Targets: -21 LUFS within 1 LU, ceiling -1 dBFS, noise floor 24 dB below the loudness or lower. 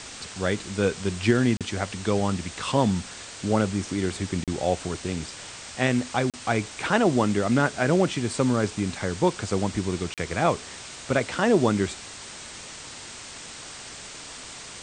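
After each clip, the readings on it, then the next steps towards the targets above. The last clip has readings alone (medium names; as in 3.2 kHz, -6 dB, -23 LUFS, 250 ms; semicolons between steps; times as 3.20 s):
dropouts 4; longest dropout 37 ms; noise floor -41 dBFS; noise floor target -50 dBFS; loudness -25.5 LUFS; peak level -7.0 dBFS; loudness target -21.0 LUFS
-> interpolate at 1.57/4.44/6.30/10.14 s, 37 ms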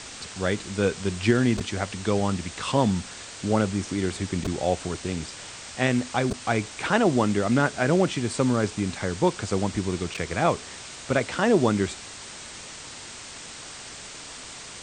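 dropouts 0; noise floor -41 dBFS; noise floor target -50 dBFS
-> noise print and reduce 9 dB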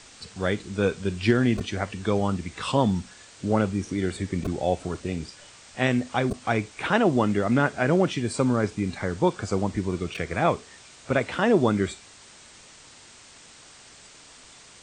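noise floor -50 dBFS; loudness -25.5 LUFS; peak level -7.0 dBFS; loudness target -21.0 LUFS
-> trim +4.5 dB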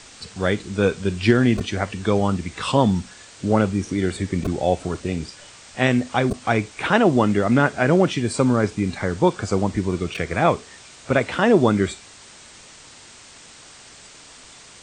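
loudness -21.0 LUFS; peak level -2.5 dBFS; noise floor -45 dBFS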